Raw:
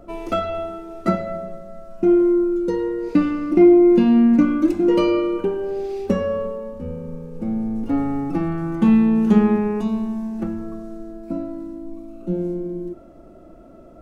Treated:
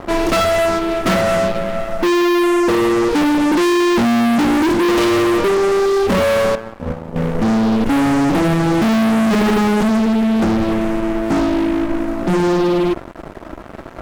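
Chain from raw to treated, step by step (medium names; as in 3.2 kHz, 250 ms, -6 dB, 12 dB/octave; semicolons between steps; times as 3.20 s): 6.55–7.16 s: gate -26 dBFS, range -12 dB; fuzz box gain 34 dB, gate -43 dBFS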